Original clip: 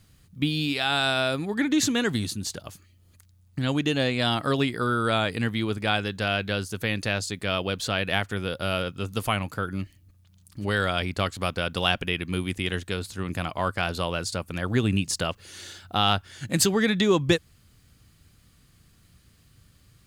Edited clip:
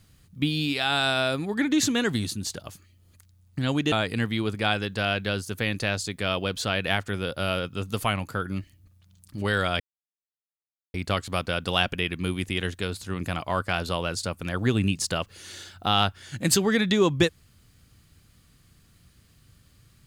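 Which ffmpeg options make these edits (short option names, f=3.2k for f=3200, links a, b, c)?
-filter_complex "[0:a]asplit=3[a][b][c];[a]atrim=end=3.922[d];[b]atrim=start=5.148:end=11.03,asetpts=PTS-STARTPTS,afade=t=out:st=5.878:d=0.004:c=hsin,apad=pad_dur=1.14[e];[c]atrim=start=11.03,asetpts=PTS-STARTPTS,afade=t=in:d=0.004:c=hsin[f];[e][f]concat=n=2:v=0:a=1[g];[d][g]acrossfade=d=0.004:c1=hsin:c2=hsin"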